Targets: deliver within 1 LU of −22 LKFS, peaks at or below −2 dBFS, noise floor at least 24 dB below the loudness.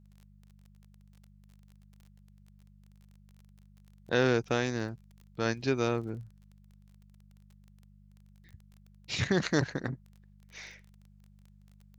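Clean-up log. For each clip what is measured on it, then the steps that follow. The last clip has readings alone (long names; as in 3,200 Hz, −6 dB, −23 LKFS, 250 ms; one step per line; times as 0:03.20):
crackle rate 25 per second; mains hum 50 Hz; hum harmonics up to 200 Hz; level of the hum −56 dBFS; integrated loudness −31.0 LKFS; sample peak −12.5 dBFS; target loudness −22.0 LKFS
→ click removal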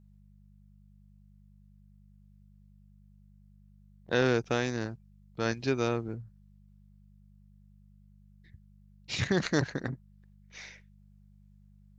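crackle rate 0 per second; mains hum 50 Hz; hum harmonics up to 200 Hz; level of the hum −56 dBFS
→ hum removal 50 Hz, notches 4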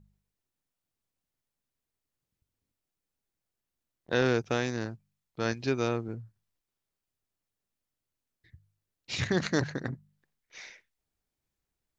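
mains hum none found; integrated loudness −31.0 LKFS; sample peak −12.0 dBFS; target loudness −22.0 LKFS
→ level +9 dB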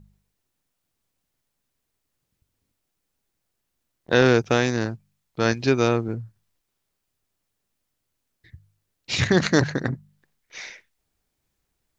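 integrated loudness −22.0 LKFS; sample peak −3.0 dBFS; background noise floor −79 dBFS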